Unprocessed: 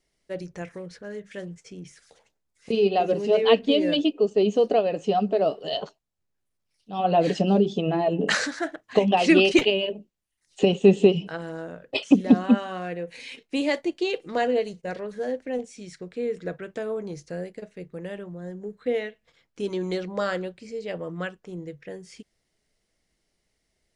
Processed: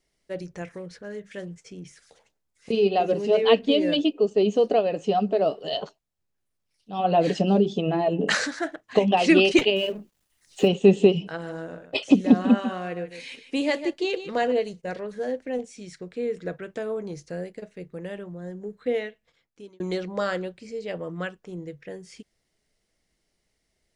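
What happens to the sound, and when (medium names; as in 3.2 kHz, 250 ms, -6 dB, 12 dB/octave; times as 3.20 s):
9.76–10.68 s: companding laws mixed up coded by mu
11.27–14.52 s: delay 148 ms -11.5 dB
18.99–19.80 s: fade out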